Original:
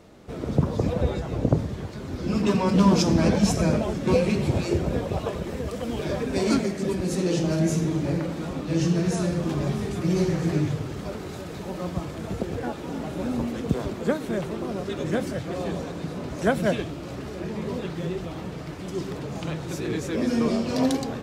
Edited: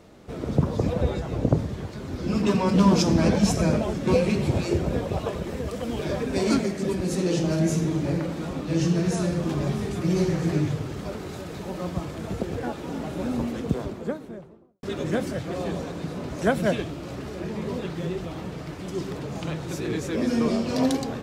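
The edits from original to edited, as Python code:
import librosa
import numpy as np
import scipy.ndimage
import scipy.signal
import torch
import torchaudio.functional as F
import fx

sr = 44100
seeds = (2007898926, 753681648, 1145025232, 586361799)

y = fx.studio_fade_out(x, sr, start_s=13.45, length_s=1.38)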